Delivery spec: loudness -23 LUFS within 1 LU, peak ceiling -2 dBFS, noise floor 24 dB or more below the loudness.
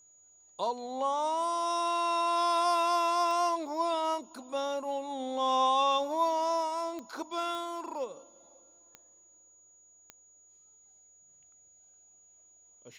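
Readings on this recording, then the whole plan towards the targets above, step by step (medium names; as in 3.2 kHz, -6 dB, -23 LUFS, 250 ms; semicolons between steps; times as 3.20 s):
clicks found 5; steady tone 6.8 kHz; tone level -58 dBFS; loudness -30.5 LUFS; peak level -16.5 dBFS; loudness target -23.0 LUFS
-> de-click; band-stop 6.8 kHz, Q 30; trim +7.5 dB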